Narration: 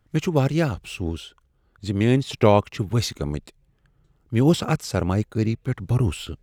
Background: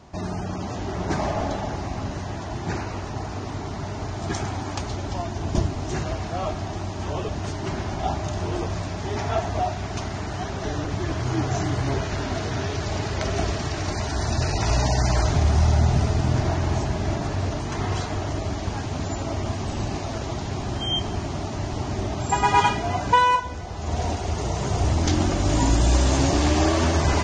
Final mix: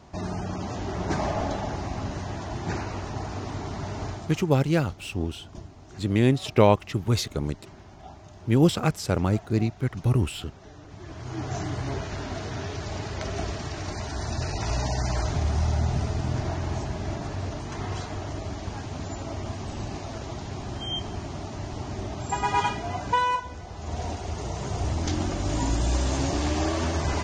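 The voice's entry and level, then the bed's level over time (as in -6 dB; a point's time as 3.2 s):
4.15 s, -1.5 dB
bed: 4.1 s -2 dB
4.46 s -19 dB
10.81 s -19 dB
11.53 s -6 dB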